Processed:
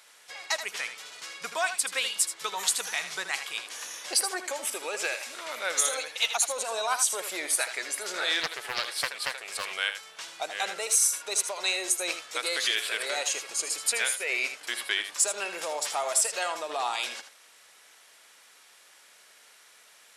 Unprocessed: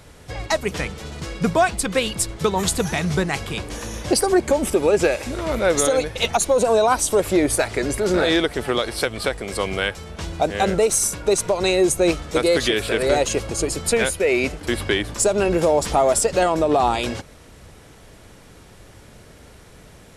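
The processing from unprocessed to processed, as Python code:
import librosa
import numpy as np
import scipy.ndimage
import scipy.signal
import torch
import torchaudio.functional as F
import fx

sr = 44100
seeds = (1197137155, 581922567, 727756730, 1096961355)

y = scipy.signal.sosfilt(scipy.signal.bessel(2, 1600.0, 'highpass', norm='mag', fs=sr, output='sos'), x)
y = y + 10.0 ** (-10.0 / 20.0) * np.pad(y, (int(79 * sr / 1000.0), 0))[:len(y)]
y = fx.doppler_dist(y, sr, depth_ms=0.31, at=(8.41, 9.73))
y = F.gain(torch.from_numpy(y), -2.5).numpy()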